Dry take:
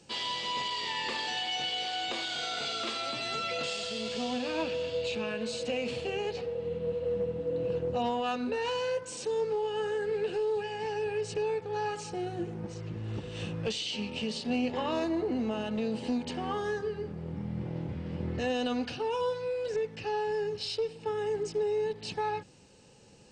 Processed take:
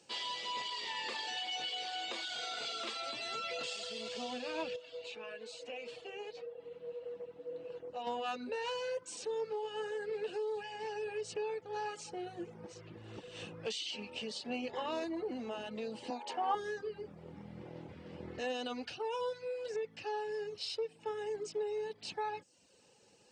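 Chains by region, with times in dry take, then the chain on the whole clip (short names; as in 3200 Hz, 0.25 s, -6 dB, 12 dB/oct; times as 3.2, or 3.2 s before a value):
4.76–8.07 tone controls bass -8 dB, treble -3 dB + flange 1.8 Hz, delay 6.3 ms, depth 1 ms, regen +63%
16.1–16.55 HPF 320 Hz + bell 840 Hz +11.5 dB 0.82 oct
whole clip: HPF 53 Hz; reverb removal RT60 0.59 s; tone controls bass -11 dB, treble +1 dB; gain -4.5 dB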